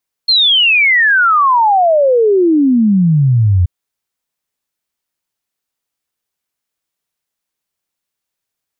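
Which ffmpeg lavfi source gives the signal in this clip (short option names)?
-f lavfi -i "aevalsrc='0.447*clip(min(t,3.38-t)/0.01,0,1)*sin(2*PI*4300*3.38/log(85/4300)*(exp(log(85/4300)*t/3.38)-1))':d=3.38:s=44100"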